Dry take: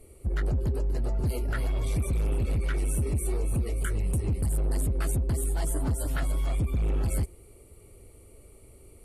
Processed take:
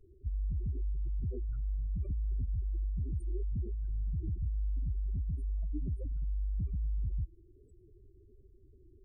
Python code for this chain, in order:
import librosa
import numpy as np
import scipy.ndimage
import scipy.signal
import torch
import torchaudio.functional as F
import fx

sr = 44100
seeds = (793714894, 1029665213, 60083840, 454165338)

y = fx.spec_gate(x, sr, threshold_db=-15, keep='strong')
y = fx.formant_shift(y, sr, semitones=-3)
y = F.gain(torch.from_numpy(y), -6.0).numpy()